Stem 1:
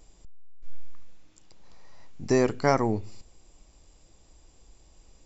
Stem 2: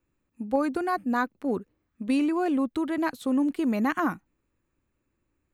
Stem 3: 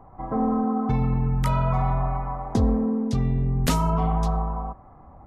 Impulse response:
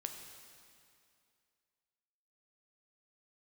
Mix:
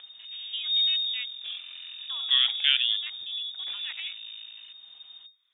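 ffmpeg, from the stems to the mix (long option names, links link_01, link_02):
-filter_complex "[0:a]volume=-1dB[link_01];[1:a]volume=-11.5dB[link_02];[2:a]aeval=exprs='max(val(0),0)':channel_layout=same,volume=-17.5dB[link_03];[link_01][link_02][link_03]amix=inputs=3:normalize=0,acompressor=mode=upward:threshold=-40dB:ratio=2.5,lowpass=frequency=3100:width_type=q:width=0.5098,lowpass=frequency=3100:width_type=q:width=0.6013,lowpass=frequency=3100:width_type=q:width=0.9,lowpass=frequency=3100:width_type=q:width=2.563,afreqshift=-3700"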